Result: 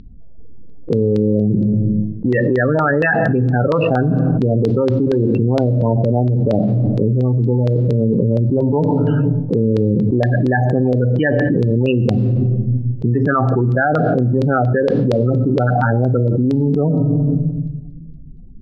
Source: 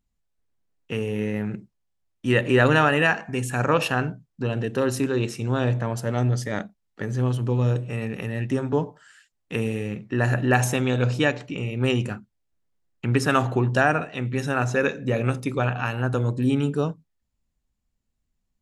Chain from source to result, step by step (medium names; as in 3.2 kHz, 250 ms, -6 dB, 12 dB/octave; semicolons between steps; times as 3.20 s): local Wiener filter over 25 samples; dynamic bell 3.2 kHz, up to -6 dB, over -43 dBFS, Q 1.4; loudest bins only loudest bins 16; LFO low-pass saw down 4.3 Hz 540–4200 Hz; on a send at -21 dB: reverberation RT60 1.0 s, pre-delay 12 ms; on the sum: level flattener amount 100%; trim -1.5 dB